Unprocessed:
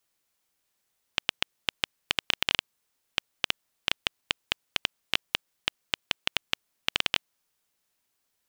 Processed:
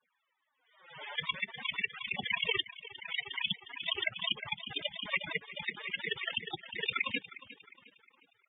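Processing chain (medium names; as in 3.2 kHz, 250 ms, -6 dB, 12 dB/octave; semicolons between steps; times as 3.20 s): treble shelf 2.7 kHz -9 dB; noise-vocoded speech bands 6; in parallel at -6 dB: overload inside the chain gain 25 dB; on the sum: flange 0.46 Hz, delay 0.1 ms, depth 7 ms, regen -1%; resampled via 8 kHz; on a send: feedback delay 358 ms, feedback 42%, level -16.5 dB; on the sum: loudest bins only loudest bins 16; swell ahead of each attack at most 78 dB/s; trim +5 dB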